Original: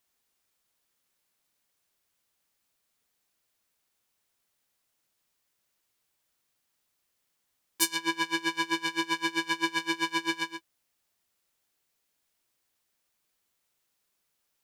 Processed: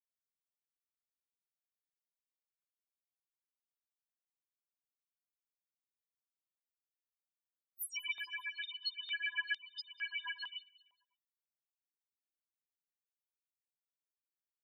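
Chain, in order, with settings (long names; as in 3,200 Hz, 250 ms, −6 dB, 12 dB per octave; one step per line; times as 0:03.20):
spectral magnitudes quantised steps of 30 dB
high-shelf EQ 5,400 Hz +6 dB
spectral peaks only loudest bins 1
0:07.91–0:09.92: frequency shifter +20 Hz
on a send: repeating echo 193 ms, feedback 48%, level −23.5 dB
on the sum: high-pass on a step sequencer 2.2 Hz 740–4,900 Hz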